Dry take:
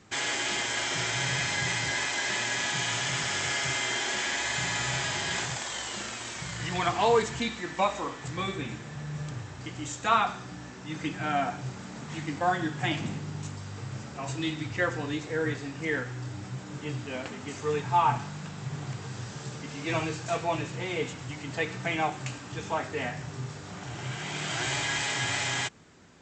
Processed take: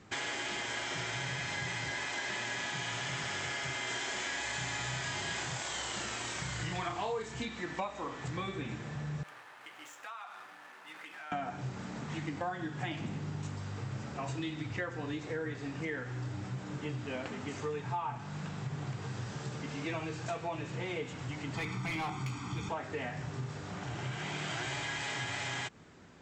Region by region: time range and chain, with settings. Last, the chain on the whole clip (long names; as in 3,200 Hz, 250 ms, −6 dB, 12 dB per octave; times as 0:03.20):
0:03.87–0:07.45: high-shelf EQ 7,300 Hz +8 dB + double-tracking delay 32 ms −4 dB
0:09.23–0:11.32: running median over 9 samples + high-pass filter 950 Hz + downward compressor, threshold −42 dBFS
0:21.55–0:22.69: high-pass filter 60 Hz 24 dB per octave + comb filter 0.9 ms, depth 93% + hard clipping −27.5 dBFS
whole clip: high-shelf EQ 4,900 Hz −8.5 dB; downward compressor 6 to 1, threshold −34 dBFS